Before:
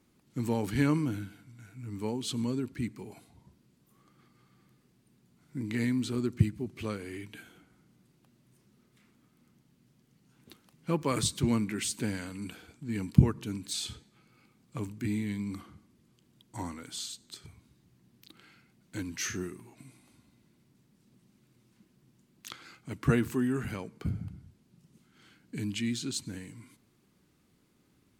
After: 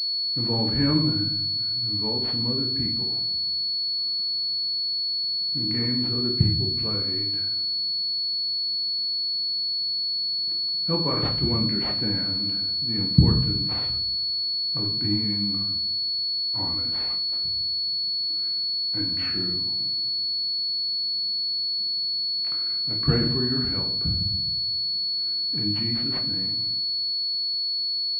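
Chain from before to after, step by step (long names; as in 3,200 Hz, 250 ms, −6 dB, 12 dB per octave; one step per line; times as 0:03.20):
low-shelf EQ 79 Hz +9 dB
rectangular room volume 120 cubic metres, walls mixed, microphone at 0.69 metres
switching amplifier with a slow clock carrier 4,400 Hz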